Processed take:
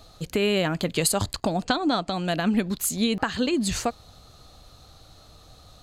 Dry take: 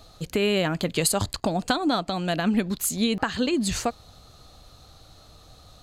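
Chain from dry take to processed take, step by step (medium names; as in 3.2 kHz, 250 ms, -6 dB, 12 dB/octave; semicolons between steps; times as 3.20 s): 1.64–2.22 s: low-pass 6.2 kHz -> 12 kHz 24 dB/octave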